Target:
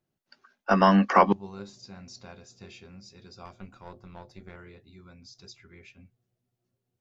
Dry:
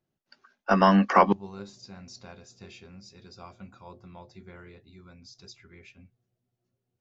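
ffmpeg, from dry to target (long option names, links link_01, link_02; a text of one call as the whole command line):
ffmpeg -i in.wav -filter_complex "[0:a]asettb=1/sr,asplit=3[link_01][link_02][link_03];[link_01]atrim=end=3.454[link_04];[link_02]atrim=start=3.45:end=4.56,asetpts=PTS-STARTPTS,afade=type=in:duration=0.004:curve=qsin,afade=type=out:start_time=1.106:duration=0.004:curve=qsin,aeval=exprs='0.0266*(cos(1*acos(clip(val(0)/0.0266,-1,1)))-cos(1*PI/2))+0.0075*(cos(2*acos(clip(val(0)/0.0266,-1,1)))-cos(2*PI/2))+0.0015*(cos(6*acos(clip(val(0)/0.0266,-1,1)))-cos(6*PI/2))':channel_layout=same[link_05];[link_03]atrim=start=4.556[link_06];[link_04][link_05]acrossfade=duration=0.004:curve1=hsin:curve2=qsin[link_07];[link_07][link_06]acrossfade=duration=0.004:curve1=qsin:curve2=hsin" out.wav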